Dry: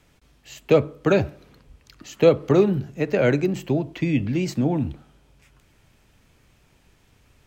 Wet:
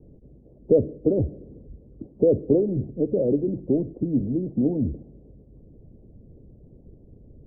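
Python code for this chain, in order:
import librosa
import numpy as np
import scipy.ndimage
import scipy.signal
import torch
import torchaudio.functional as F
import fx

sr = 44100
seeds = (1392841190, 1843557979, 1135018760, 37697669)

y = fx.hpss(x, sr, part='harmonic', gain_db=-14)
y = fx.power_curve(y, sr, exponent=0.7)
y = scipy.signal.sosfilt(scipy.signal.butter(6, 530.0, 'lowpass', fs=sr, output='sos'), y)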